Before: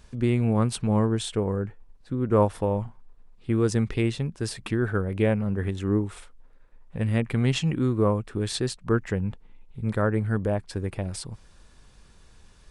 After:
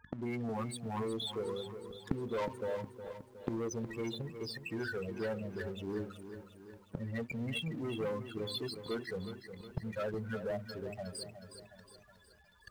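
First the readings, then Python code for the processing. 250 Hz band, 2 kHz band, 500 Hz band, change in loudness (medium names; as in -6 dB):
-14.0 dB, -8.5 dB, -10.5 dB, -13.5 dB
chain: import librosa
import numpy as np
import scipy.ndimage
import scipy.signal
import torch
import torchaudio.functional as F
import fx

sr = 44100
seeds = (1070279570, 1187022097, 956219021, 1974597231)

y = fx.spec_quant(x, sr, step_db=15)
y = fx.curve_eq(y, sr, hz=(150.0, 430.0, 840.0), db=(0, 6, 13))
y = fx.rev_double_slope(y, sr, seeds[0], early_s=0.63, late_s=2.8, knee_db=-18, drr_db=17.5)
y = fx.spec_topn(y, sr, count=8)
y = fx.leveller(y, sr, passes=3)
y = scipy.signal.sosfilt(scipy.signal.butter(2, 87.0, 'highpass', fs=sr, output='sos'), y)
y = fx.hum_notches(y, sr, base_hz=50, count=8)
y = fx.leveller(y, sr, passes=1)
y = fx.gate_flip(y, sr, shuts_db=-25.0, range_db=-29)
y = fx.echo_crushed(y, sr, ms=364, feedback_pct=55, bits=11, wet_db=-10.0)
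y = F.gain(torch.from_numpy(y), 1.5).numpy()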